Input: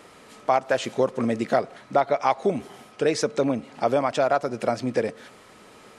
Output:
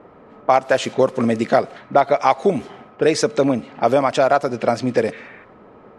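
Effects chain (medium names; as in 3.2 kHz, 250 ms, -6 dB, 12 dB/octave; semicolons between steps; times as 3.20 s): spectral replace 5.15–5.42 s, 1.1–4.3 kHz before; level-controlled noise filter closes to 900 Hz, open at -20 dBFS; trim +6 dB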